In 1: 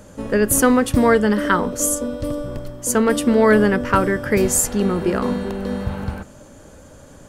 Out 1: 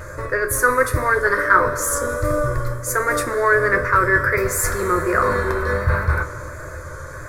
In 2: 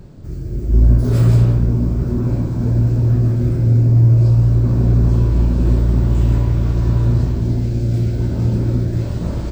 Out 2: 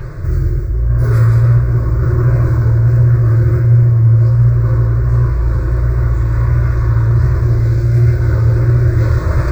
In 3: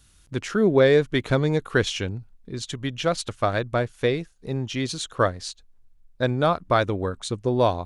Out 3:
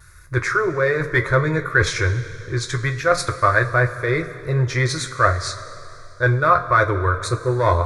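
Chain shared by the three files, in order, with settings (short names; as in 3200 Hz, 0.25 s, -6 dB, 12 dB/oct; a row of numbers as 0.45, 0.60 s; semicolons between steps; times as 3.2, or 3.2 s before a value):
in parallel at -6 dB: hard clip -17.5 dBFS; on the sum: fixed phaser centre 800 Hz, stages 6; reverse; compressor 6:1, threshold -24 dBFS; reverse; vibrato 1.4 Hz 40 cents; ten-band EQ 125 Hz +6 dB, 250 Hz -6 dB, 500 Hz -3 dB, 1000 Hz +7 dB, 2000 Hz +7 dB, 8000 Hz -6 dB; two-slope reverb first 0.2 s, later 2.9 s, from -18 dB, DRR 3.5 dB; normalise peaks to -1.5 dBFS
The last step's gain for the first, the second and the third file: +6.5, +11.5, +7.0 dB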